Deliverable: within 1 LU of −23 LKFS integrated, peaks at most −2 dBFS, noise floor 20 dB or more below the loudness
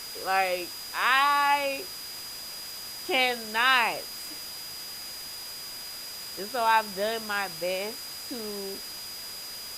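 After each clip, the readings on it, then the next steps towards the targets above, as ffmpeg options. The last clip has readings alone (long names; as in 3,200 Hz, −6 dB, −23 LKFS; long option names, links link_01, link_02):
interfering tone 4,900 Hz; level of the tone −39 dBFS; background noise floor −40 dBFS; target noise floor −49 dBFS; integrated loudness −28.5 LKFS; sample peak −9.0 dBFS; target loudness −23.0 LKFS
→ -af "bandreject=frequency=4900:width=30"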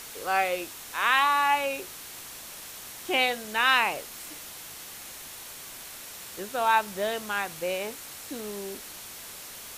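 interfering tone none found; background noise floor −43 dBFS; target noise floor −47 dBFS
→ -af "afftdn=noise_reduction=6:noise_floor=-43"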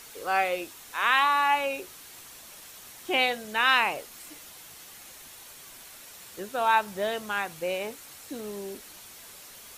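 background noise floor −48 dBFS; integrated loudness −26.5 LKFS; sample peak −8.5 dBFS; target loudness −23.0 LKFS
→ -af "volume=3.5dB"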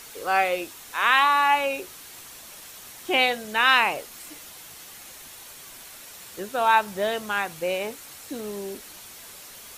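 integrated loudness −23.0 LKFS; sample peak −5.0 dBFS; background noise floor −44 dBFS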